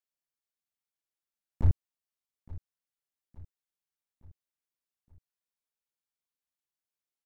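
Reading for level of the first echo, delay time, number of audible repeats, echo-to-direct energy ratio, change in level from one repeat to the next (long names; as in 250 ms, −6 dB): −19.0 dB, 868 ms, 3, −17.5 dB, −6.0 dB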